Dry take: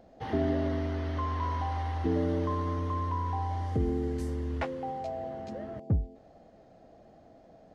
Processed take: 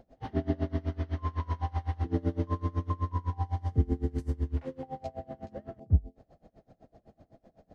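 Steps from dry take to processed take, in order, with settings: low shelf 200 Hz +9 dB; pre-echo 42 ms -17.5 dB; dB-linear tremolo 7.9 Hz, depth 26 dB

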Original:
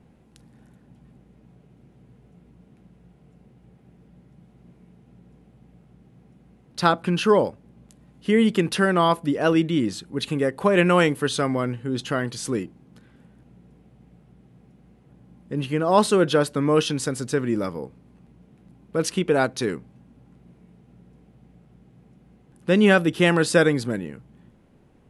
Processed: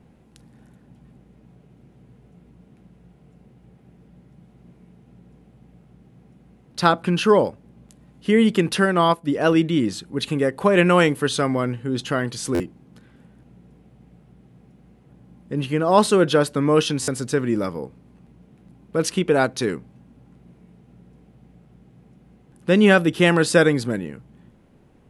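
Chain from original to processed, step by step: stuck buffer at 12.54/17.02, samples 512, times 4; 8.83–9.32 upward expander 1.5:1, over -33 dBFS; gain +2 dB

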